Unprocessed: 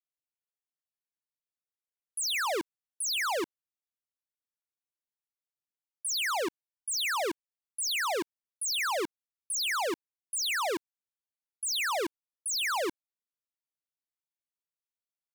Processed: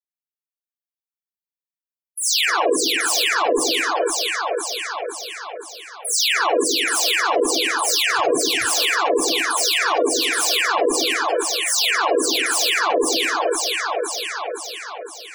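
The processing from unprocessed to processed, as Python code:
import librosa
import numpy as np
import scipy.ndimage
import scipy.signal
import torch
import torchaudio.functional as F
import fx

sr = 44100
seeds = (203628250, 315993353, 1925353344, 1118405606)

p1 = fx.bin_expand(x, sr, power=1.5)
p2 = scipy.signal.sosfilt(scipy.signal.butter(2, 260.0, 'highpass', fs=sr, output='sos'), p1)
p3 = fx.peak_eq(p2, sr, hz=3200.0, db=4.0, octaves=2.9)
p4 = fx.dispersion(p3, sr, late='lows', ms=83.0, hz=2200.0)
p5 = fx.fold_sine(p4, sr, drive_db=9, ceiling_db=-24.5)
p6 = p4 + (p5 * librosa.db_to_amplitude(-6.0))
p7 = fx.echo_split(p6, sr, split_hz=440.0, low_ms=103, high_ms=512, feedback_pct=52, wet_db=-4)
p8 = 10.0 ** (-34.5 / 20.0) * np.tanh(p7 / 10.0 ** (-34.5 / 20.0))
p9 = fx.rev_gated(p8, sr, seeds[0], gate_ms=100, shape='rising', drr_db=-7.0)
p10 = fx.spec_gate(p9, sr, threshold_db=-20, keep='strong')
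y = p10 * librosa.db_to_amplitude(9.0)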